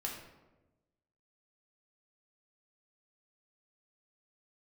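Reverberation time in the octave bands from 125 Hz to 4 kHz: 1.4 s, 1.3 s, 1.2 s, 0.95 s, 0.80 s, 0.60 s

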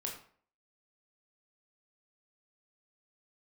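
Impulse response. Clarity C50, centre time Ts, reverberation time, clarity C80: 6.5 dB, 28 ms, 0.50 s, 10.0 dB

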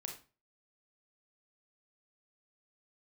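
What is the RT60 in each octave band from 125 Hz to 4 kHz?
0.45 s, 0.40 s, 0.35 s, 0.35 s, 0.30 s, 0.30 s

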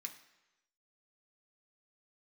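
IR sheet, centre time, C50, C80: 13 ms, 10.5 dB, 13.5 dB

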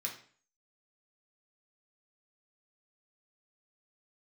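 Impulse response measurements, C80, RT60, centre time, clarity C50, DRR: 12.5 dB, 0.45 s, 20 ms, 8.0 dB, -2.0 dB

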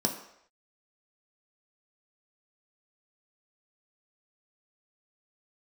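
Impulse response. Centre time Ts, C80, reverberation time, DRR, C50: 21 ms, 11.0 dB, no single decay rate, 1.5 dB, 9.0 dB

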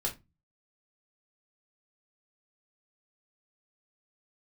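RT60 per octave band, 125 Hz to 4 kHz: 0.50 s, 0.40 s, 0.25 s, 0.20 s, 0.20 s, 0.15 s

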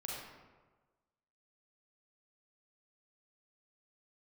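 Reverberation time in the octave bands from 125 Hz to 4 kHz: 1.4 s, 1.3 s, 1.4 s, 1.3 s, 1.0 s, 0.75 s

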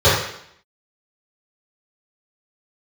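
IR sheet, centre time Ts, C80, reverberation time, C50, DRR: 54 ms, 5.5 dB, 0.70 s, 2.0 dB, -15.0 dB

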